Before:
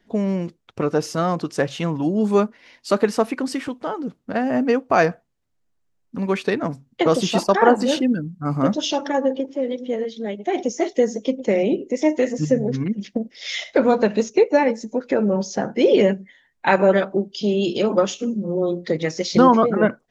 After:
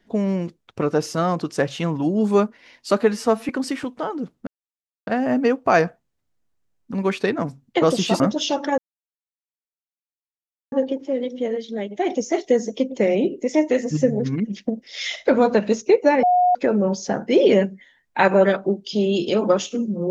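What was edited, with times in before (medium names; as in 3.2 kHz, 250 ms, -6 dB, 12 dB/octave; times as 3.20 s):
3.01–3.33 s: stretch 1.5×
4.31 s: insert silence 0.60 s
7.44–8.62 s: delete
9.20 s: insert silence 1.94 s
14.71–15.03 s: bleep 721 Hz -13 dBFS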